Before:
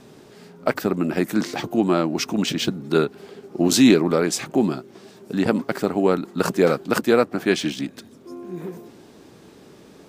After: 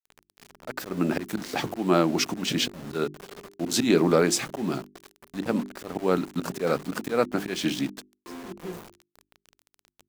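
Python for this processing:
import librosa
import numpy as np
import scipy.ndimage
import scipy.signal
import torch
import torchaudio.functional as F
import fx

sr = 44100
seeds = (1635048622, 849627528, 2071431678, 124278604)

y = fx.auto_swell(x, sr, attack_ms=195.0)
y = np.where(np.abs(y) >= 10.0 ** (-37.5 / 20.0), y, 0.0)
y = fx.hum_notches(y, sr, base_hz=50, count=8)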